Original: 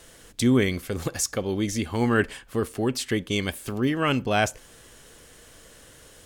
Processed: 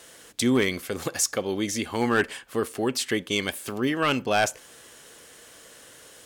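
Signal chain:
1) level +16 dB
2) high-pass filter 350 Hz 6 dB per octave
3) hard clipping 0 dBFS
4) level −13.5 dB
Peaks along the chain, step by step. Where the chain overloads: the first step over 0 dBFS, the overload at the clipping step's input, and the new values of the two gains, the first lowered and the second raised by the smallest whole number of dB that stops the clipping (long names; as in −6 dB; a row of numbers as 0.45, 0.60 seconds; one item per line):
+8.0, +8.0, 0.0, −13.5 dBFS
step 1, 8.0 dB
step 1 +8 dB, step 4 −5.5 dB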